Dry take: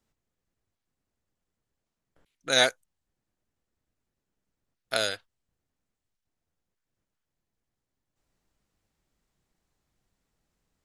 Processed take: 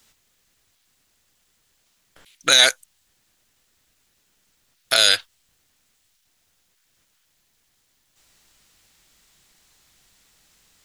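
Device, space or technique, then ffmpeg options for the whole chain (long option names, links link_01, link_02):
mastering chain: -af "equalizer=frequency=3500:width_type=o:width=0.77:gain=2,acompressor=threshold=-24dB:ratio=3,asoftclip=type=tanh:threshold=-14dB,tiltshelf=frequency=1200:gain=-8,alimiter=level_in=18dB:limit=-1dB:release=50:level=0:latency=1,volume=-1dB"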